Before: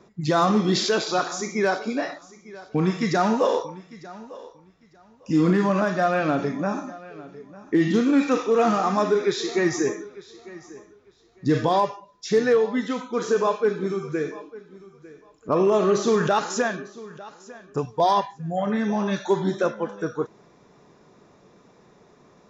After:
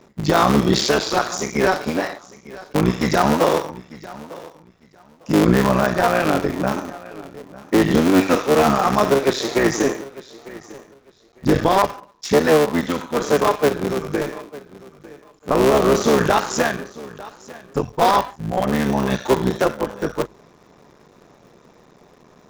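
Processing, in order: cycle switcher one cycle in 3, muted; notches 50/100 Hz; gain +6 dB

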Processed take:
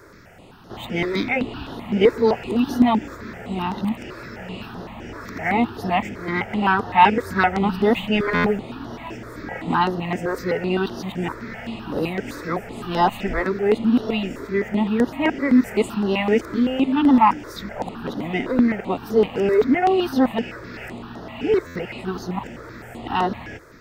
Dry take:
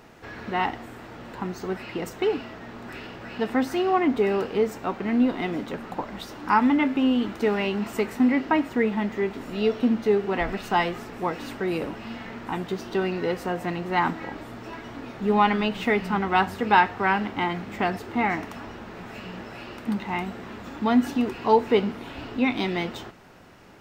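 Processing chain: whole clip reversed; stuck buffer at 8.34/21.65, samples 512, times 8; step phaser 7.8 Hz 780–7800 Hz; gain +6.5 dB

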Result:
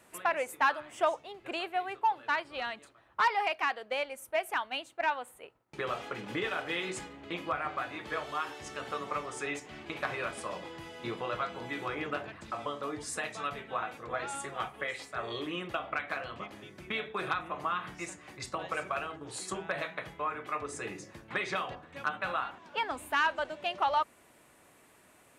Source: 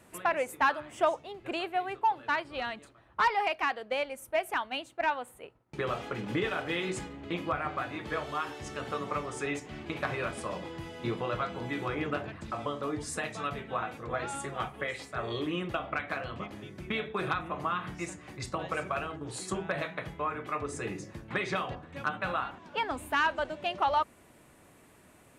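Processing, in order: low shelf 310 Hz -10 dB

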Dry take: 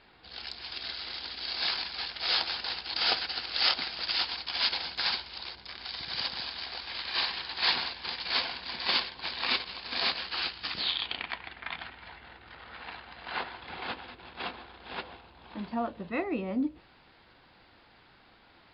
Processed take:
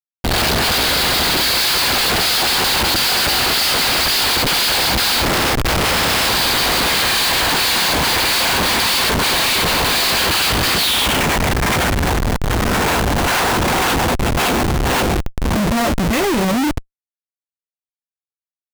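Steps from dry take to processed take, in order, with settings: 5.25–6.26 spectral limiter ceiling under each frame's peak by 20 dB; sample leveller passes 5; Schmitt trigger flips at -30.5 dBFS; gain +4.5 dB

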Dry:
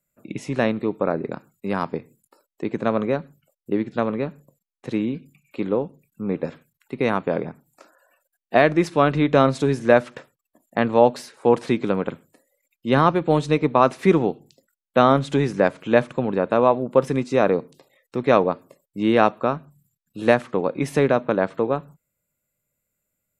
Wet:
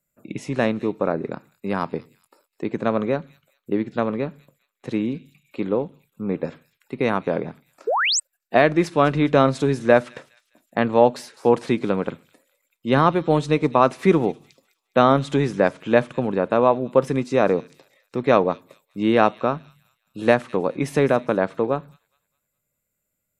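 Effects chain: thin delay 0.206 s, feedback 37%, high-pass 3500 Hz, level -14 dB; painted sound rise, 7.87–8.2, 390–8700 Hz -20 dBFS

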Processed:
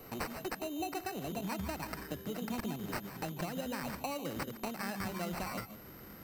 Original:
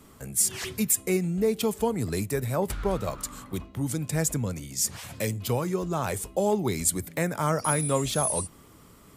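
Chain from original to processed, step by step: speed glide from 177% -> 117%; compressor 6:1, threshold -37 dBFS, peak gain reduction 16 dB; on a send at -12 dB: reverb RT60 0.25 s, pre-delay 0.142 s; on the sum: sample-rate reducer 3400 Hz, jitter 0%; whine 12000 Hz -55 dBFS

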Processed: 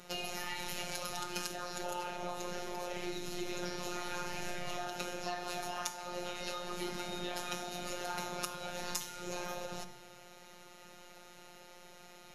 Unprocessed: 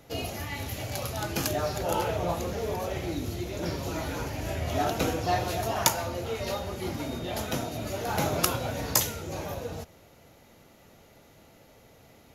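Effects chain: LPF 11000 Hz 24 dB/oct; low shelf 480 Hz -8.5 dB; compressor 12:1, threshold -40 dBFS, peak gain reduction 22 dB; robotiser 177 Hz; shoebox room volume 2800 m³, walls furnished, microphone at 1.3 m; gain +6 dB

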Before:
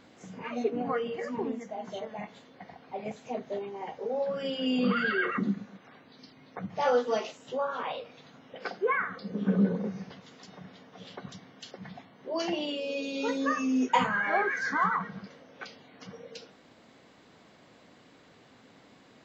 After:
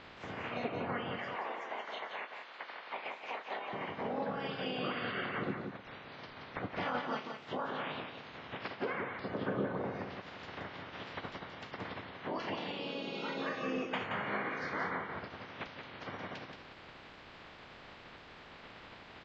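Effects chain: spectral limiter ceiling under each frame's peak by 25 dB; 1.18–3.73 HPF 630 Hz 12 dB/oct; compressor 3:1, threshold -47 dBFS, peak gain reduction 20 dB; air absorption 370 m; echo 0.176 s -6 dB; gain +8.5 dB

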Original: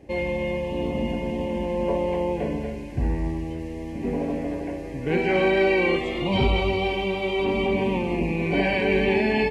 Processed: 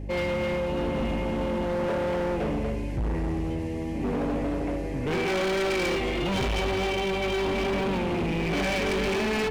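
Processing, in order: hum 50 Hz, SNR 13 dB; overloaded stage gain 26.5 dB; gain +2 dB

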